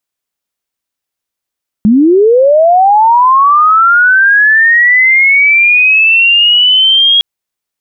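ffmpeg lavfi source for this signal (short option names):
-f lavfi -i "aevalsrc='pow(10,(-3-1*t/5.36)/20)*sin(2*PI*(200*t+3100*t*t/(2*5.36)))':d=5.36:s=44100"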